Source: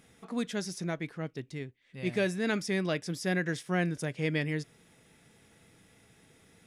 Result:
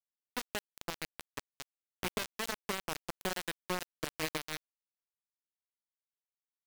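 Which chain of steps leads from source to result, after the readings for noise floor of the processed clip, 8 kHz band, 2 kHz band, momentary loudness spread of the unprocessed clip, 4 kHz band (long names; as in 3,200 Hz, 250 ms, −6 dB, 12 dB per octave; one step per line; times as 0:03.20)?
below −85 dBFS, +0.5 dB, −6.0 dB, 10 LU, +0.5 dB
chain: downward compressor 8 to 1, threshold −33 dBFS, peak gain reduction 9.5 dB
bit reduction 5 bits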